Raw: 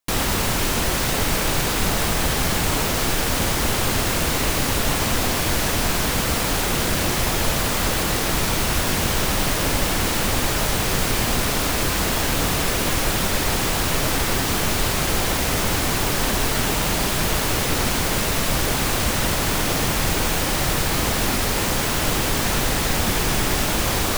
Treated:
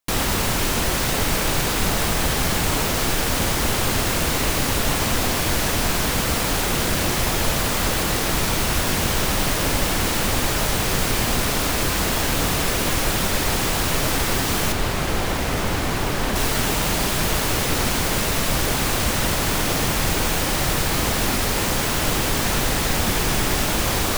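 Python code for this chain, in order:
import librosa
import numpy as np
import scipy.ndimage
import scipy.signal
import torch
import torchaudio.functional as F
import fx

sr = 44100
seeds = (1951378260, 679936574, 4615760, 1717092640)

y = fx.high_shelf(x, sr, hz=3800.0, db=-8.0, at=(14.72, 16.36))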